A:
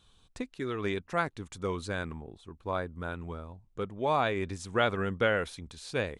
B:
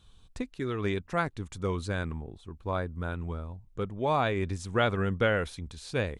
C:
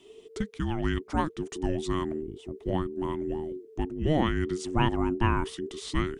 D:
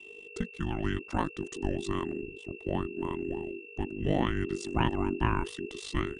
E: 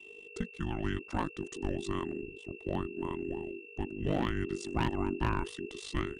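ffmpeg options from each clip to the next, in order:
ffmpeg -i in.wav -af "lowshelf=frequency=150:gain=9" out.wav
ffmpeg -i in.wav -filter_complex "[0:a]asplit=2[link_01][link_02];[link_02]acompressor=threshold=-36dB:ratio=6,volume=-2dB[link_03];[link_01][link_03]amix=inputs=2:normalize=0,afreqshift=-460" out.wav
ffmpeg -i in.wav -af "aeval=exprs='val(0)+0.00631*sin(2*PI*2700*n/s)':channel_layout=same,aeval=exprs='val(0)*sin(2*PI*25*n/s)':channel_layout=same" out.wav
ffmpeg -i in.wav -af "asoftclip=type=hard:threshold=-18.5dB,volume=-2.5dB" out.wav

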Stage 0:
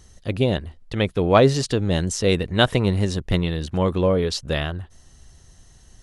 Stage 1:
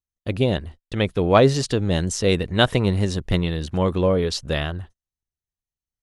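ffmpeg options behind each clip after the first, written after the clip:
ffmpeg -i in.wav -af "agate=range=-45dB:threshold=-38dB:ratio=16:detection=peak" out.wav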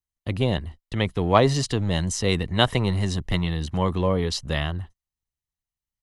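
ffmpeg -i in.wav -filter_complex "[0:a]aecho=1:1:1:0.34,acrossover=split=260[link_01][link_02];[link_01]asoftclip=type=hard:threshold=-20.5dB[link_03];[link_03][link_02]amix=inputs=2:normalize=0,volume=-1.5dB" out.wav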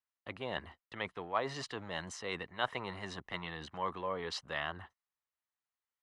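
ffmpeg -i in.wav -af "areverse,acompressor=threshold=-29dB:ratio=6,areverse,bandpass=frequency=1300:width_type=q:width=1.1:csg=0,volume=4dB" out.wav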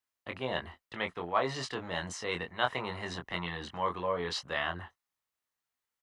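ffmpeg -i in.wav -filter_complex "[0:a]asplit=2[link_01][link_02];[link_02]adelay=23,volume=-5dB[link_03];[link_01][link_03]amix=inputs=2:normalize=0,volume=3.5dB" out.wav

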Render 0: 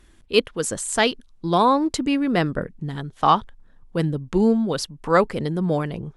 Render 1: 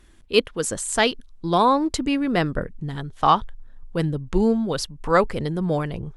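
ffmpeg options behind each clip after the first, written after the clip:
ffmpeg -i in.wav -af "asubboost=boost=3:cutoff=99" out.wav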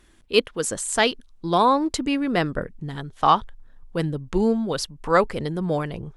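ffmpeg -i in.wav -af "lowshelf=frequency=140:gain=-5.5" out.wav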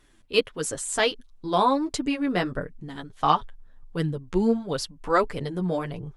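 ffmpeg -i in.wav -af "flanger=delay=6.7:depth=4.4:regen=2:speed=1.5:shape=sinusoidal" out.wav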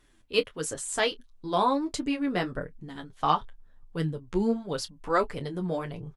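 ffmpeg -i in.wav -filter_complex "[0:a]asplit=2[link_01][link_02];[link_02]adelay=25,volume=-13.5dB[link_03];[link_01][link_03]amix=inputs=2:normalize=0,volume=-3.5dB" out.wav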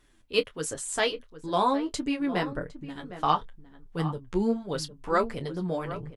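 ffmpeg -i in.wav -filter_complex "[0:a]asplit=2[link_01][link_02];[link_02]adelay=758,volume=-13dB,highshelf=frequency=4000:gain=-17.1[link_03];[link_01][link_03]amix=inputs=2:normalize=0" out.wav

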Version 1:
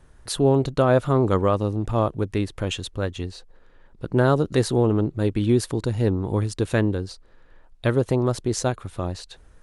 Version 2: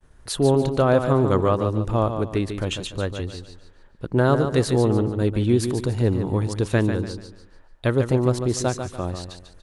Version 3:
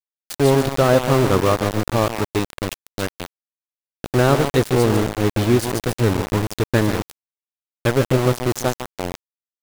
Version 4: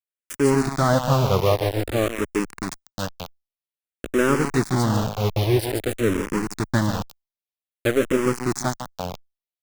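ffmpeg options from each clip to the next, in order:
ffmpeg -i in.wav -af "agate=range=-33dB:threshold=-49dB:ratio=3:detection=peak,aecho=1:1:145|290|435|580:0.398|0.135|0.046|0.0156" out.wav
ffmpeg -i in.wav -af "aeval=exprs='val(0)*gte(abs(val(0)),0.0891)':channel_layout=same,volume=3dB" out.wav
ffmpeg -i in.wav -filter_complex "[0:a]asplit=2[link_01][link_02];[link_02]afreqshift=-0.51[link_03];[link_01][link_03]amix=inputs=2:normalize=1" out.wav

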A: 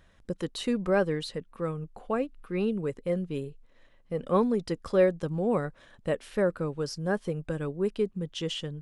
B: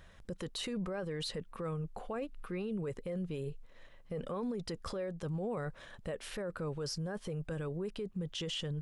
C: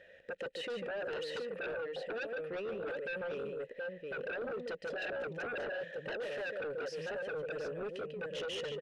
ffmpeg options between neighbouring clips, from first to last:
ffmpeg -i in.wav -af "equalizer=frequency=280:width_type=o:width=0.57:gain=-5.5,acompressor=threshold=-30dB:ratio=4,alimiter=level_in=10.5dB:limit=-24dB:level=0:latency=1:release=15,volume=-10.5dB,volume=3.5dB" out.wav
ffmpeg -i in.wav -filter_complex "[0:a]asplit=3[link_01][link_02][link_03];[link_01]bandpass=frequency=530:width_type=q:width=8,volume=0dB[link_04];[link_02]bandpass=frequency=1840:width_type=q:width=8,volume=-6dB[link_05];[link_03]bandpass=frequency=2480:width_type=q:width=8,volume=-9dB[link_06];[link_04][link_05][link_06]amix=inputs=3:normalize=0,aecho=1:1:145|725:0.447|0.562,aeval=exprs='0.0266*sin(PI/2*5.01*val(0)/0.0266)':channel_layout=same,volume=-4dB" out.wav

